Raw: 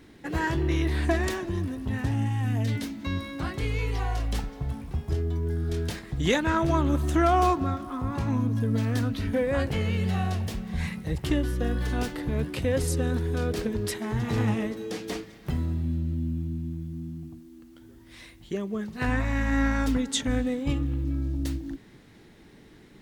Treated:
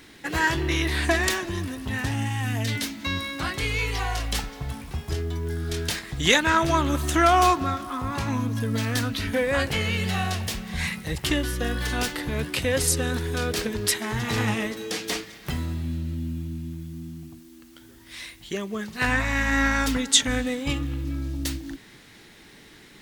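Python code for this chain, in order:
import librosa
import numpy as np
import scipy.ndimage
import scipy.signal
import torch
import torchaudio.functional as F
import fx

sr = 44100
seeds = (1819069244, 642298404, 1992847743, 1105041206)

y = fx.tilt_shelf(x, sr, db=-6.5, hz=970.0)
y = F.gain(torch.from_numpy(y), 5.0).numpy()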